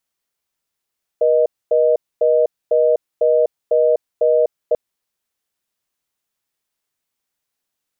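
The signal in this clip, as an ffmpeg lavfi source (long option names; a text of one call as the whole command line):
ffmpeg -f lavfi -i "aevalsrc='0.2*(sin(2*PI*480*t)+sin(2*PI*620*t))*clip(min(mod(t,0.5),0.25-mod(t,0.5))/0.005,0,1)':duration=3.54:sample_rate=44100" out.wav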